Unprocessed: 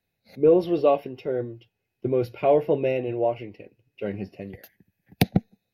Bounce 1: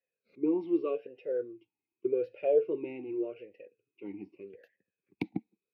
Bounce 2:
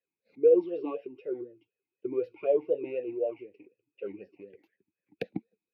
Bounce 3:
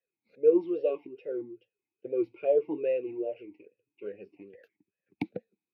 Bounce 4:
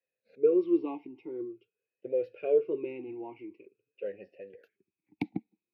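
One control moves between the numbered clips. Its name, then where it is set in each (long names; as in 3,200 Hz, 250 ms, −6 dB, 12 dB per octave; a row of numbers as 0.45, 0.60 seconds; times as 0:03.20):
formant filter swept between two vowels, speed: 0.84, 4, 2.4, 0.47 Hertz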